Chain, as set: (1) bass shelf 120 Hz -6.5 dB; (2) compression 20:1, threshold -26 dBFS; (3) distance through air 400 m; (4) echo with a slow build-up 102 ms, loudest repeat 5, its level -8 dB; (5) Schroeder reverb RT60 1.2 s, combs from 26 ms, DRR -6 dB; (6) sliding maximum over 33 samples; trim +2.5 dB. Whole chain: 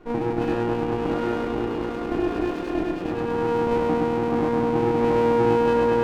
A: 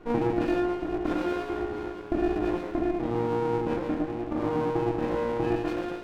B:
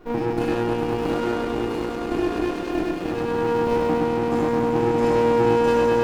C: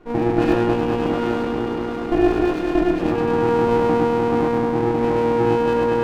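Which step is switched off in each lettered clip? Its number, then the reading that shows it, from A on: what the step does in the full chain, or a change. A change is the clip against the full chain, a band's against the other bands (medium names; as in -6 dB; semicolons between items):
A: 4, momentary loudness spread change -3 LU; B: 3, 4 kHz band +3.0 dB; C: 2, mean gain reduction 2.5 dB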